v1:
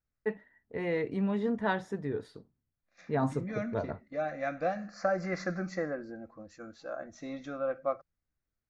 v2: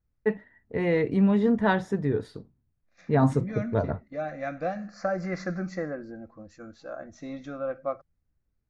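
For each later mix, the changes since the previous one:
first voice +5.5 dB; master: add bass shelf 210 Hz +7.5 dB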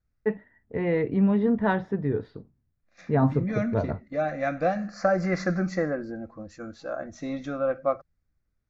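first voice: add distance through air 280 m; second voice +5.5 dB

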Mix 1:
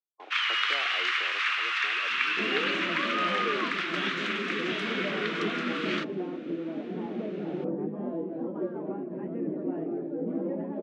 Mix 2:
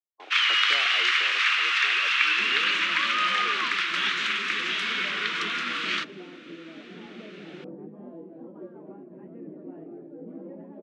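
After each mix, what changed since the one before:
first sound: add treble shelf 2 kHz +9.5 dB; second sound -10.0 dB; master: add bass shelf 73 Hz +8 dB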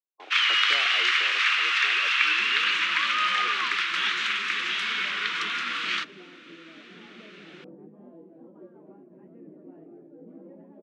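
second sound -6.0 dB

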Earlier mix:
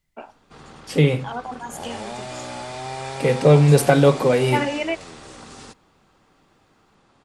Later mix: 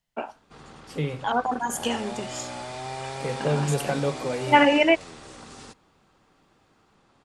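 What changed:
first voice +6.5 dB; second voice -12.0 dB; background -3.0 dB

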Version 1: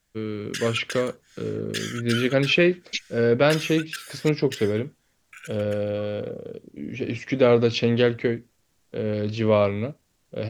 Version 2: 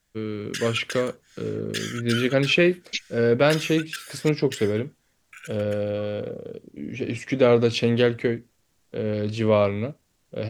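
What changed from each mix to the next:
first voice: remove steep low-pass 6.3 kHz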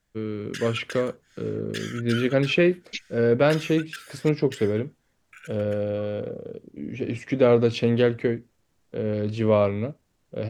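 master: add treble shelf 2.3 kHz -7.5 dB

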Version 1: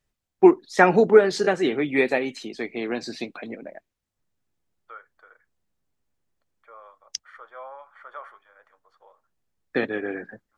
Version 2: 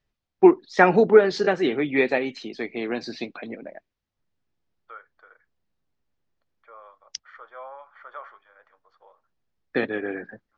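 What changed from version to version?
master: add low-pass 5.5 kHz 24 dB/octave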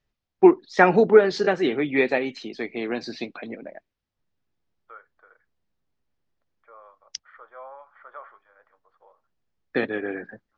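second voice: add distance through air 430 m

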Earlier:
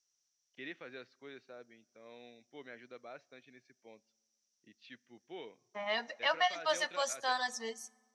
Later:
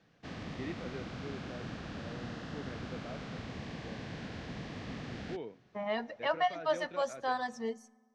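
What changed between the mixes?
background: unmuted; master: add tilt EQ -4.5 dB/octave

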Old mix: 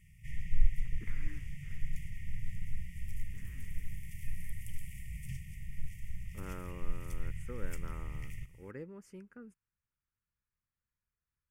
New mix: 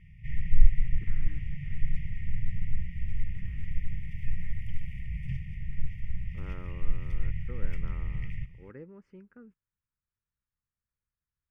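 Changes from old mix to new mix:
background +8.0 dB; master: add distance through air 340 m

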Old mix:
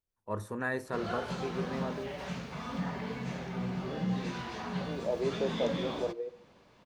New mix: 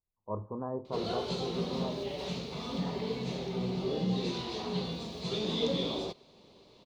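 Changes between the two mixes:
first voice: add Chebyshev low-pass 1.1 kHz, order 5; second voice: muted; background: add fifteen-band graphic EQ 400 Hz +9 dB, 1.6 kHz -12 dB, 4 kHz +12 dB; reverb: off

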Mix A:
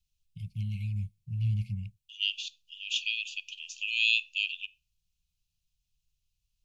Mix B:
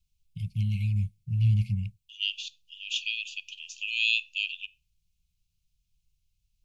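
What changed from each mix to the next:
first voice +6.0 dB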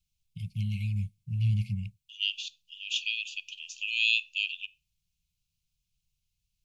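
first voice: add bass shelf 81 Hz -10 dB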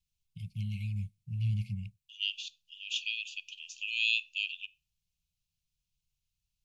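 first voice -4.5 dB; second voice -3.5 dB

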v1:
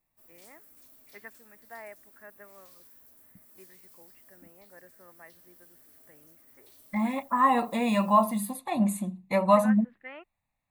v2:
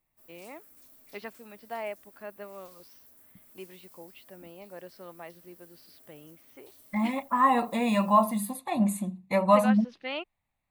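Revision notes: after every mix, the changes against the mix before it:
first voice: remove four-pole ladder low-pass 2 kHz, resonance 65%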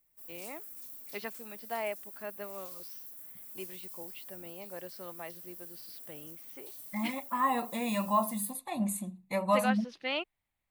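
second voice -7.0 dB; master: add treble shelf 4.9 kHz +10 dB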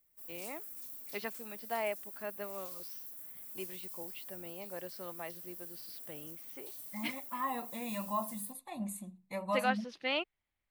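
second voice -7.5 dB

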